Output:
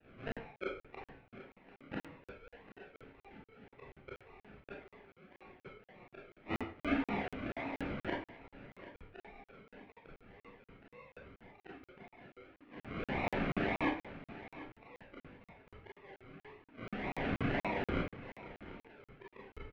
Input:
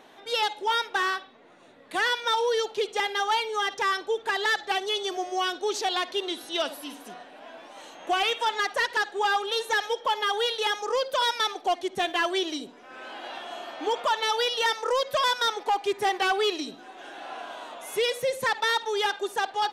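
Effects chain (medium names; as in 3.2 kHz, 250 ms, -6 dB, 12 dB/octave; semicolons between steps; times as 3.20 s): expander -45 dBFS; bass shelf 310 Hz +8 dB; hum notches 50/100/150/200/250/300/350/400/450 Hz; decimation with a swept rate 39×, swing 60% 1.8 Hz; four-pole ladder low-pass 2.8 kHz, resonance 50%; inverted gate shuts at -31 dBFS, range -35 dB; delay 743 ms -16 dB; reverberation RT60 0.40 s, pre-delay 22 ms, DRR -5.5 dB; crackling interface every 0.24 s, samples 2048, zero, from 0.32 s; trim +5.5 dB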